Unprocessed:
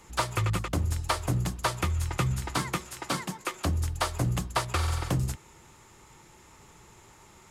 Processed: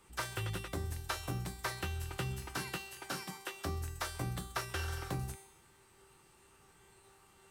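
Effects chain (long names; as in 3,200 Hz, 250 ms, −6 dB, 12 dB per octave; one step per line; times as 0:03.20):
tuned comb filter 390 Hz, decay 0.85 s, mix 90%
harmonic generator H 2 −17 dB, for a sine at −16.5 dBFS
formants moved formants +3 semitones
level +8 dB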